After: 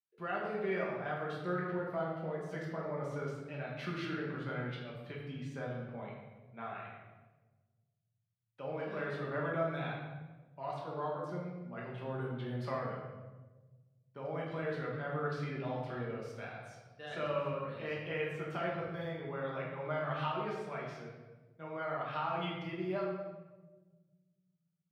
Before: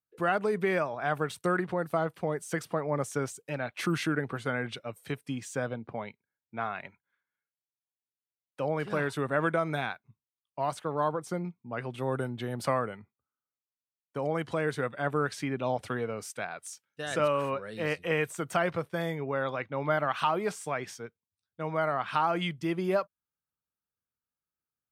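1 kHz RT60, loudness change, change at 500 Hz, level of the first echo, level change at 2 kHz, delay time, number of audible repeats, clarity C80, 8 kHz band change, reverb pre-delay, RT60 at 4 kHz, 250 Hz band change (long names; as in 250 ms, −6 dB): 1.1 s, −7.5 dB, −7.0 dB, no echo audible, −8.0 dB, no echo audible, no echo audible, 4.0 dB, below −20 dB, 5 ms, 0.85 s, −7.0 dB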